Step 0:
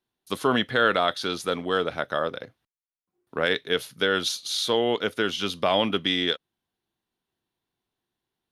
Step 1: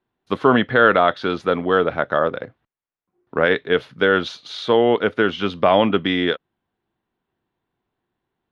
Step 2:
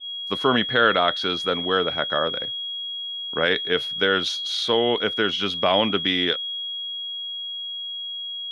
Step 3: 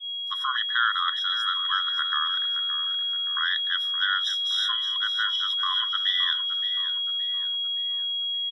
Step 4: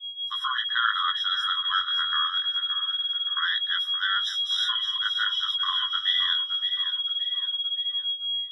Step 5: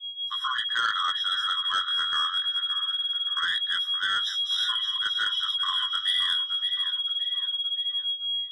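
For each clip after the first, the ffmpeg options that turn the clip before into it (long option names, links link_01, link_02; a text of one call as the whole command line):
ffmpeg -i in.wav -af "lowpass=2000,volume=8dB" out.wav
ffmpeg -i in.wav -af "crystalizer=i=3:c=0,aeval=exprs='val(0)+0.0631*sin(2*PI*3300*n/s)':channel_layout=same,adynamicequalizer=threshold=0.0447:dfrequency=2400:dqfactor=0.7:tfrequency=2400:tqfactor=0.7:attack=5:release=100:ratio=0.375:range=2:mode=boostabove:tftype=highshelf,volume=-6dB" out.wav
ffmpeg -i in.wav -filter_complex "[0:a]alimiter=limit=-9.5dB:level=0:latency=1:release=382,asplit=2[link_01][link_02];[link_02]aecho=0:1:570|1140|1710|2280|2850:0.299|0.128|0.0552|0.0237|0.0102[link_03];[link_01][link_03]amix=inputs=2:normalize=0,afftfilt=real='re*eq(mod(floor(b*sr/1024/1000),2),1)':imag='im*eq(mod(floor(b*sr/1024/1000),2),1)':win_size=1024:overlap=0.75" out.wav
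ffmpeg -i in.wav -af "flanger=delay=15.5:depth=7.6:speed=0.24,volume=2.5dB" out.wav
ffmpeg -i in.wav -af "asoftclip=type=tanh:threshold=-16dB" out.wav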